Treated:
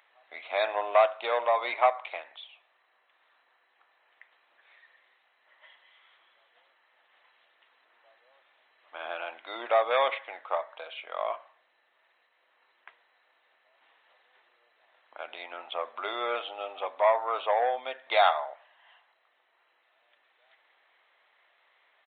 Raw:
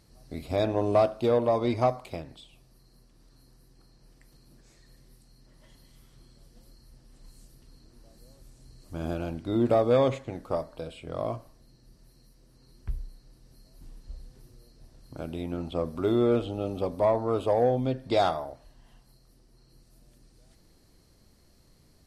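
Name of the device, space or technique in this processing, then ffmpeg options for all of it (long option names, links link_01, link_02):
musical greeting card: -af "aresample=8000,aresample=44100,highpass=frequency=740:width=0.5412,highpass=frequency=740:width=1.3066,equalizer=frequency=2000:width_type=o:width=0.57:gain=6,volume=6dB"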